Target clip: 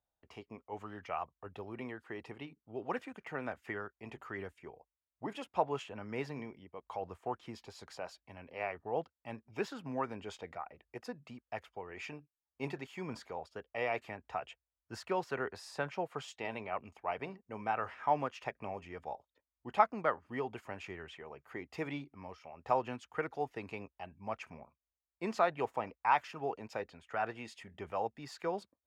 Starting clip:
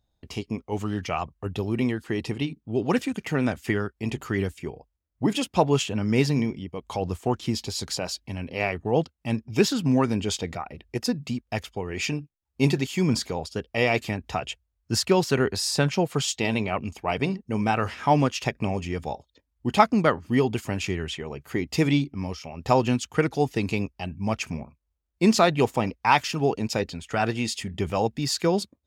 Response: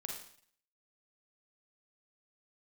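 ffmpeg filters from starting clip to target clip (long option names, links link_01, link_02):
-filter_complex "[0:a]acrossover=split=500 2100:gain=0.178 1 0.126[link_01][link_02][link_03];[link_01][link_02][link_03]amix=inputs=3:normalize=0,volume=-7.5dB"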